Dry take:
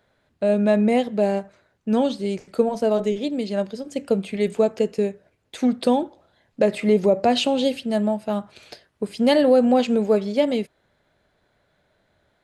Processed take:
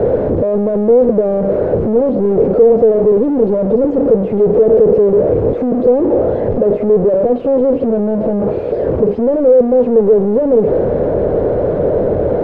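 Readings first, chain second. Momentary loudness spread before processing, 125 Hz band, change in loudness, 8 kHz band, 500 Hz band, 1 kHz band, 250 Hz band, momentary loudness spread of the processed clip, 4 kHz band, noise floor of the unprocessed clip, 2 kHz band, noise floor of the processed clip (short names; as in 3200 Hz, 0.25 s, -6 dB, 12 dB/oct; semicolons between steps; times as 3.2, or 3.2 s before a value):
10 LU, +12.0 dB, +9.0 dB, under -20 dB, +12.0 dB, +2.5 dB, +6.5 dB, 5 LU, under -20 dB, -68 dBFS, n/a, -18 dBFS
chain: infinite clipping; synth low-pass 480 Hz, resonance Q 4.9; gain +5.5 dB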